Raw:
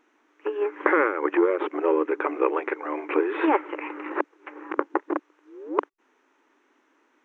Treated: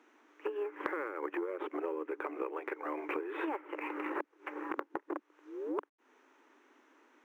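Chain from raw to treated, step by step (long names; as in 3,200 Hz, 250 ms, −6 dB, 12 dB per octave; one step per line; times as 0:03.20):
elliptic high-pass filter 220 Hz, stop band 40 dB
downward compressor 10 to 1, threshold −35 dBFS, peak gain reduction 19.5 dB
level +1 dB
IMA ADPCM 176 kbit/s 44,100 Hz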